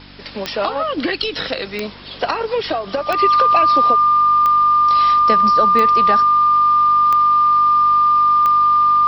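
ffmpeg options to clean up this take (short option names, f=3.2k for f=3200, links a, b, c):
-af "adeclick=t=4,bandreject=f=48.5:t=h:w=4,bandreject=f=97:t=h:w=4,bandreject=f=145.5:t=h:w=4,bandreject=f=194:t=h:w=4,bandreject=f=242.5:t=h:w=4,bandreject=f=291:t=h:w=4,bandreject=f=1.2k:w=30,afwtdn=0.013"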